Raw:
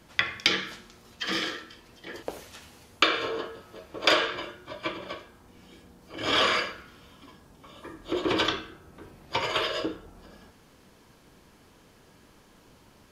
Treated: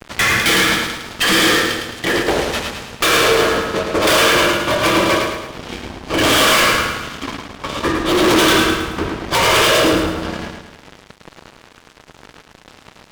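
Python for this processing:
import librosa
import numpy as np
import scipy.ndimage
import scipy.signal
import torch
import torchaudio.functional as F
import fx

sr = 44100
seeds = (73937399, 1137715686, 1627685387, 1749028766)

y = scipy.signal.sosfilt(scipy.signal.butter(2, 4200.0, 'lowpass', fs=sr, output='sos'), x)
y = fx.fuzz(y, sr, gain_db=43.0, gate_db=-51.0)
y = fx.echo_feedback(y, sr, ms=108, feedback_pct=48, wet_db=-5.0)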